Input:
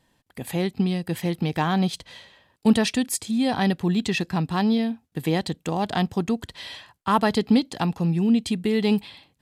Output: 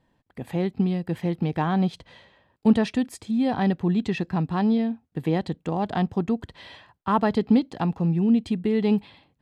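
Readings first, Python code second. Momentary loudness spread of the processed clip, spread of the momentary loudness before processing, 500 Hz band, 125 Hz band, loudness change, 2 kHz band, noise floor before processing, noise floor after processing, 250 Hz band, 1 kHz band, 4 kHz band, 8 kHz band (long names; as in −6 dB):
7 LU, 8 LU, −0.5 dB, 0.0 dB, −0.5 dB, −5.0 dB, −68 dBFS, −71 dBFS, 0.0 dB, −1.5 dB, −9.0 dB, below −10 dB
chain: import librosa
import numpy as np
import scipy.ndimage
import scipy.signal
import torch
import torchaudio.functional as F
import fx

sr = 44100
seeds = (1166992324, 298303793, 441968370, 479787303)

y = fx.lowpass(x, sr, hz=1300.0, slope=6)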